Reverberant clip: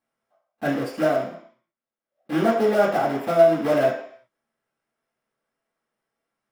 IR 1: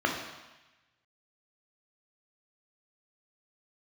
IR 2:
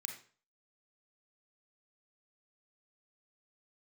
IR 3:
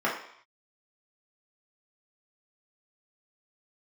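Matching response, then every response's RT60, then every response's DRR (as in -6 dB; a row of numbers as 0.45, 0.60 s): 3; 1.1, 0.40, 0.65 s; 1.0, 3.0, -6.5 dB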